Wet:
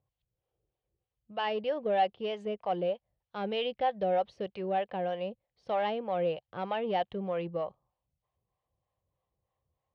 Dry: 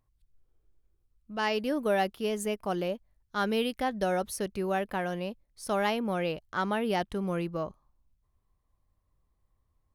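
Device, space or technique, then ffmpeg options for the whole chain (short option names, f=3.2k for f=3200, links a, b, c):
guitar amplifier with harmonic tremolo: -filter_complex "[0:a]acrossover=split=520[a][b];[a]aeval=exprs='val(0)*(1-0.7/2+0.7/2*cos(2*PI*3.2*n/s))':c=same[c];[b]aeval=exprs='val(0)*(1-0.7/2-0.7/2*cos(2*PI*3.2*n/s))':c=same[d];[c][d]amix=inputs=2:normalize=0,asoftclip=type=tanh:threshold=-23.5dB,highpass=89,equalizer=f=130:t=q:w=4:g=4,equalizer=f=260:t=q:w=4:g=-8,equalizer=f=520:t=q:w=4:g=9,equalizer=f=750:t=q:w=4:g=8,equalizer=f=1.4k:t=q:w=4:g=-5,equalizer=f=3k:t=q:w=4:g=5,lowpass=f=3.9k:w=0.5412,lowpass=f=3.9k:w=1.3066,volume=-1.5dB"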